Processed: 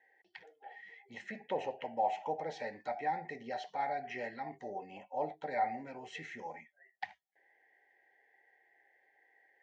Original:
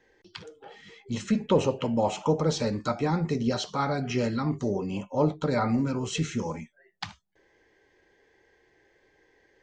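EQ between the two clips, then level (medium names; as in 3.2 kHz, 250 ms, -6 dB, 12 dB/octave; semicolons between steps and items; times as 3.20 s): two resonant band-passes 1.2 kHz, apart 1.3 oct; +2.0 dB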